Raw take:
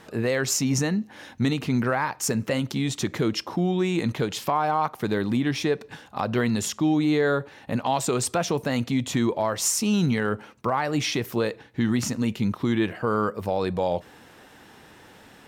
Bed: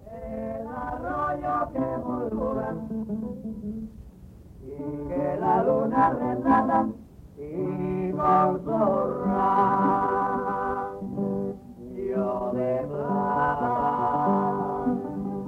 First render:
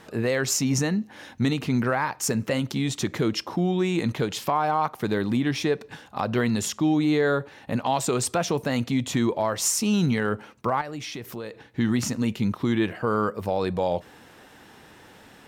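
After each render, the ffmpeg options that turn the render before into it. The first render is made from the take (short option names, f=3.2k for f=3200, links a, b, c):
-filter_complex "[0:a]asettb=1/sr,asplit=3[a][b][c];[a]atrim=end=10.814[d];[b]atrim=start=10.81:end=11.64,asetpts=PTS-STARTPTS,afade=t=in:d=0.004:c=qsin,afade=t=out:st=0.826:d=0.004:c=qsin,acompressor=threshold=-36dB:ratio=2.5:attack=3.2:release=140:knee=1:detection=peak[e];[c]atrim=start=11.636[f];[d][e]acrossfade=d=0.004:c1=hsin:c2=qsin[g];[g][f]acrossfade=d=0.004:c1=qsin:c2=hsin"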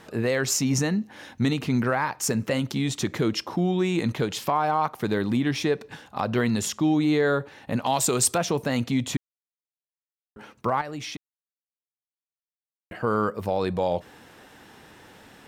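-filter_complex "[0:a]asettb=1/sr,asplit=3[a][b][c];[a]atrim=end=7.824[d];[b]atrim=start=7.82:end=8.38,asetpts=PTS-STARTPTS,afade=t=in:d=0.004:c=qsin,afade=t=out:st=0.556:d=0.004:c=qsin,aemphasis=mode=production:type=cd[e];[c]atrim=start=8.376[f];[d][e]acrossfade=d=0.004:c1=hsin:c2=qsin[g];[g][f]acrossfade=d=0.004:c1=qsin:c2=hsin,asplit=5[h][i][j][k][l];[h]atrim=end=9.17,asetpts=PTS-STARTPTS,afade=t=out:st=9.166:d=0.004:c=hsin[m];[i]atrim=start=9.17:end=10.36,asetpts=PTS-STARTPTS,volume=0[n];[j]atrim=start=10.36:end=11.17,asetpts=PTS-STARTPTS,afade=t=in:d=0.004:c=hsin,afade=t=out:st=0.806:d=0.004:c=hsin[o];[k]atrim=start=11.17:end=12.91,asetpts=PTS-STARTPTS,volume=0[p];[l]atrim=start=12.91,asetpts=PTS-STARTPTS,afade=t=in:d=0.004:c=hsin[q];[m][n][o][p][q]concat=n=5:v=0:a=1"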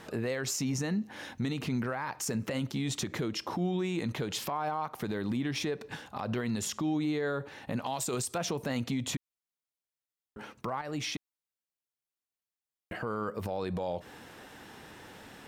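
-af "acompressor=threshold=-26dB:ratio=6,alimiter=limit=-24dB:level=0:latency=1:release=61"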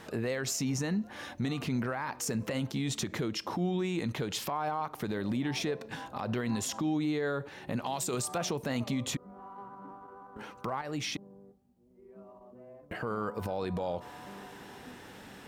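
-filter_complex "[1:a]volume=-25.5dB[a];[0:a][a]amix=inputs=2:normalize=0"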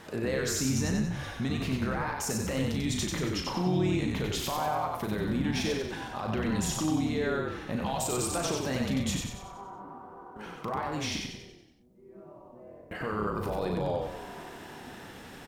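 -filter_complex "[0:a]asplit=2[a][b];[b]adelay=38,volume=-6.5dB[c];[a][c]amix=inputs=2:normalize=0,asplit=8[d][e][f][g][h][i][j][k];[e]adelay=93,afreqshift=-37,volume=-3dB[l];[f]adelay=186,afreqshift=-74,volume=-9dB[m];[g]adelay=279,afreqshift=-111,volume=-15dB[n];[h]adelay=372,afreqshift=-148,volume=-21.1dB[o];[i]adelay=465,afreqshift=-185,volume=-27.1dB[p];[j]adelay=558,afreqshift=-222,volume=-33.1dB[q];[k]adelay=651,afreqshift=-259,volume=-39.1dB[r];[d][l][m][n][o][p][q][r]amix=inputs=8:normalize=0"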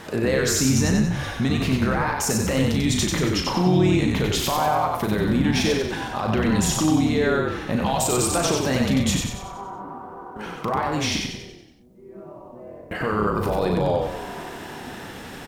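-af "volume=9dB"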